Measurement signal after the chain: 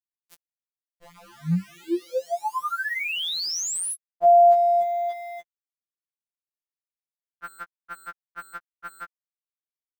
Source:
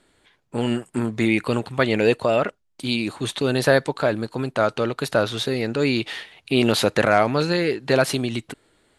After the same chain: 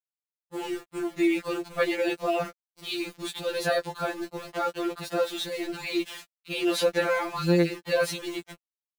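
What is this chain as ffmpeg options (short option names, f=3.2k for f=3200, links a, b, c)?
-af "aeval=exprs='val(0)*gte(abs(val(0)),0.0266)':c=same,afftfilt=real='re*2.83*eq(mod(b,8),0)':imag='im*2.83*eq(mod(b,8),0)':win_size=2048:overlap=0.75,volume=-4dB"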